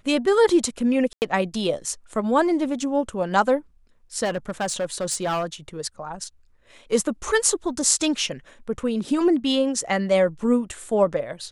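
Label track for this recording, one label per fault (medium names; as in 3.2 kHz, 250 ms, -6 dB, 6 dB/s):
1.130000	1.220000	dropout 89 ms
4.240000	5.460000	clipped -20.5 dBFS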